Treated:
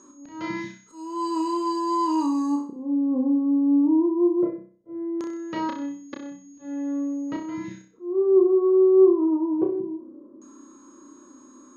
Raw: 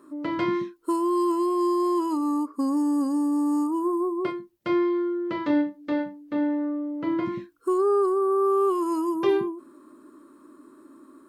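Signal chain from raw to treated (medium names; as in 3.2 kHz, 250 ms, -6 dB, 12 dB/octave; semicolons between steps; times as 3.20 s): slow attack 398 ms; whistle 6.9 kHz -56 dBFS; LFO low-pass square 0.2 Hz 510–6100 Hz; speed mistake 25 fps video run at 24 fps; on a send: flutter echo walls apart 5.4 m, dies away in 0.45 s; on the sum: trim -1 dB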